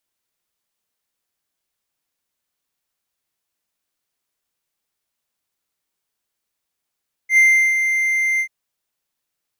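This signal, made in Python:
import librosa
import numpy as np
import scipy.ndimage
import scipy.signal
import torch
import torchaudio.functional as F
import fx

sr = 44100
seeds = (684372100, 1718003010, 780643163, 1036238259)

y = fx.adsr_tone(sr, wave='triangle', hz=2090.0, attack_ms=83.0, decay_ms=370.0, sustain_db=-7.5, held_s=1.11, release_ms=77.0, level_db=-6.5)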